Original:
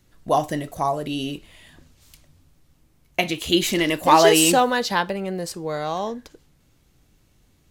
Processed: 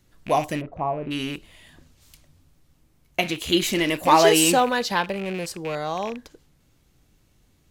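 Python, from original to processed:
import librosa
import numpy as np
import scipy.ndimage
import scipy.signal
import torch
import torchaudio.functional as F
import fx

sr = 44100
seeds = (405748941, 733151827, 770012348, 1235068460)

y = fx.rattle_buzz(x, sr, strikes_db=-36.0, level_db=-24.0)
y = fx.lowpass(y, sr, hz=1000.0, slope=12, at=(0.6, 1.1), fade=0.02)
y = y * 10.0 ** (-1.5 / 20.0)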